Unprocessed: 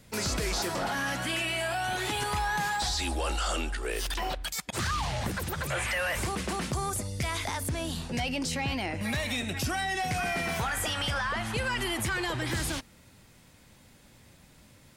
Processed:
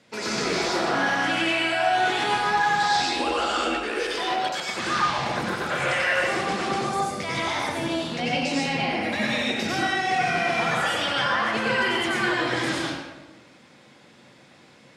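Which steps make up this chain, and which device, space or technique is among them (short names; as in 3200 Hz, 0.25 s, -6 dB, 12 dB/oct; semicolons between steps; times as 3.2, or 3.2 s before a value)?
supermarket ceiling speaker (BPF 260–5000 Hz; reverb RT60 1.2 s, pre-delay 85 ms, DRR -5 dB); 8.61–9.94 bell 14000 Hz +6 dB 0.26 oct; gain +2 dB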